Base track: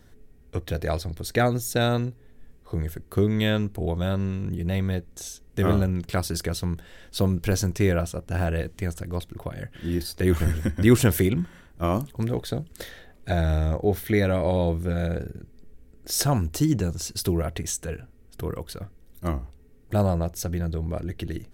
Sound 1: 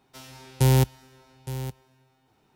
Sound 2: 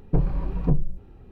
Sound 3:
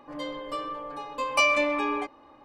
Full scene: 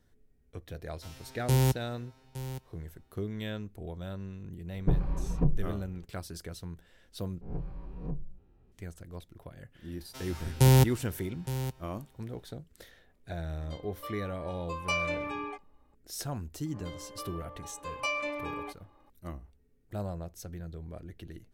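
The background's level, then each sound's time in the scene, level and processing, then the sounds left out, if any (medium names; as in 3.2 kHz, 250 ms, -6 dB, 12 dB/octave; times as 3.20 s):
base track -14 dB
0.88 s: add 1 -6 dB
4.74 s: add 2 -5 dB
7.41 s: replace with 2 -17 dB + reverse spectral sustain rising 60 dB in 0.53 s
10.00 s: add 1 -1 dB
13.51 s: add 3 -9 dB + spectral noise reduction 9 dB
16.66 s: add 3 -10.5 dB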